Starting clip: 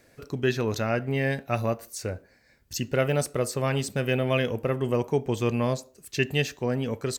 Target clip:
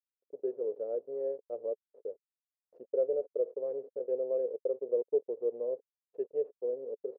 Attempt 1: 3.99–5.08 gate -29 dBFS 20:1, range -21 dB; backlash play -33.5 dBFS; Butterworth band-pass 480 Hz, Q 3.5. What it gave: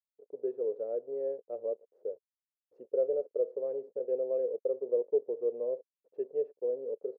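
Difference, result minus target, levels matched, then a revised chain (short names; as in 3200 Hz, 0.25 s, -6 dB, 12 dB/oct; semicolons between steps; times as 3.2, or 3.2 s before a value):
backlash: distortion -7 dB
3.99–5.08 gate -29 dBFS 20:1, range -21 dB; backlash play -26 dBFS; Butterworth band-pass 480 Hz, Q 3.5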